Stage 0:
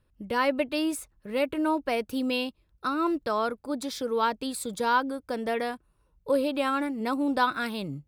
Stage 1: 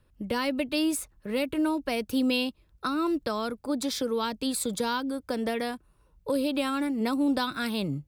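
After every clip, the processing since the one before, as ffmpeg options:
ffmpeg -i in.wav -filter_complex "[0:a]acrossover=split=290|3000[link_01][link_02][link_03];[link_02]acompressor=threshold=-34dB:ratio=6[link_04];[link_01][link_04][link_03]amix=inputs=3:normalize=0,volume=4.5dB" out.wav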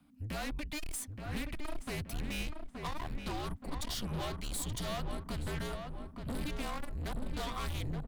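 ffmpeg -i in.wav -filter_complex "[0:a]afreqshift=-300,aeval=exprs='(tanh(63.1*val(0)+0.2)-tanh(0.2))/63.1':channel_layout=same,asplit=2[link_01][link_02];[link_02]adelay=874,lowpass=frequency=2000:poles=1,volume=-5dB,asplit=2[link_03][link_04];[link_04]adelay=874,lowpass=frequency=2000:poles=1,volume=0.51,asplit=2[link_05][link_06];[link_06]adelay=874,lowpass=frequency=2000:poles=1,volume=0.51,asplit=2[link_07][link_08];[link_08]adelay=874,lowpass=frequency=2000:poles=1,volume=0.51,asplit=2[link_09][link_10];[link_10]adelay=874,lowpass=frequency=2000:poles=1,volume=0.51,asplit=2[link_11][link_12];[link_12]adelay=874,lowpass=frequency=2000:poles=1,volume=0.51[link_13];[link_03][link_05][link_07][link_09][link_11][link_13]amix=inputs=6:normalize=0[link_14];[link_01][link_14]amix=inputs=2:normalize=0" out.wav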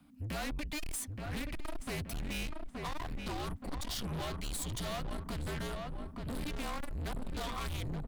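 ffmpeg -i in.wav -af "asoftclip=type=tanh:threshold=-37.5dB,volume=3.5dB" out.wav

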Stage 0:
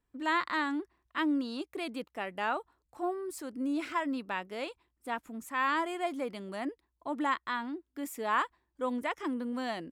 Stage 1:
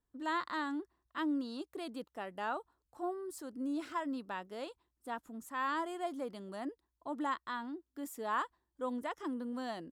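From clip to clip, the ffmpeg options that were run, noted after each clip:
ffmpeg -i in.wav -af "equalizer=frequency=2300:width=2.7:gain=-10,volume=-4.5dB" out.wav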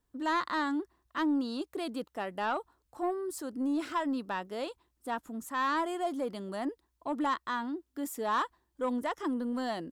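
ffmpeg -i in.wav -af "asoftclip=type=tanh:threshold=-29.5dB,volume=7dB" out.wav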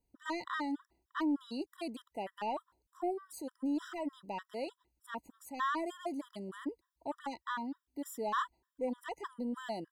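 ffmpeg -i in.wav -af "afftfilt=real='re*gt(sin(2*PI*3.3*pts/sr)*(1-2*mod(floor(b*sr/1024/990),2)),0)':imag='im*gt(sin(2*PI*3.3*pts/sr)*(1-2*mod(floor(b*sr/1024/990),2)),0)':win_size=1024:overlap=0.75,volume=-2.5dB" out.wav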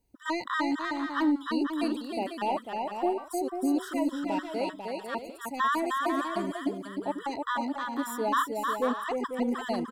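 ffmpeg -i in.wav -af "aecho=1:1:310|496|607.6|674.6|714.7:0.631|0.398|0.251|0.158|0.1,volume=7dB" out.wav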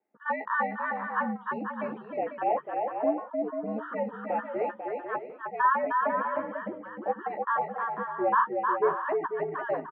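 ffmpeg -i in.wav -filter_complex "[0:a]highpass=frequency=440:width_type=q:width=0.5412,highpass=frequency=440:width_type=q:width=1.307,lowpass=frequency=2100:width_type=q:width=0.5176,lowpass=frequency=2100:width_type=q:width=0.7071,lowpass=frequency=2100:width_type=q:width=1.932,afreqshift=-79,asplit=2[link_01][link_02];[link_02]adelay=14,volume=-7dB[link_03];[link_01][link_03]amix=inputs=2:normalize=0,volume=2.5dB" out.wav

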